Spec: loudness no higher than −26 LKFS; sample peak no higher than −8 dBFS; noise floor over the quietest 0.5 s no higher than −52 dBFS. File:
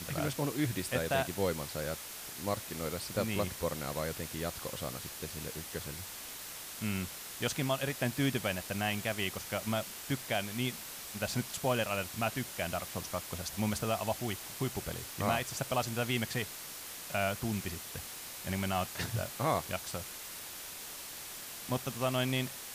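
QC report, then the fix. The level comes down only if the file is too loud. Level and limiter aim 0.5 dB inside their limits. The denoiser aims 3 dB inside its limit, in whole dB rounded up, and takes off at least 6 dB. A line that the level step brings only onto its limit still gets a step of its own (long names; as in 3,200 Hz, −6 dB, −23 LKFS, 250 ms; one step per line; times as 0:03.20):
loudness −35.5 LKFS: in spec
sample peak −16.0 dBFS: in spec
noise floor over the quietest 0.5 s −45 dBFS: out of spec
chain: broadband denoise 10 dB, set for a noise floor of −45 dBFS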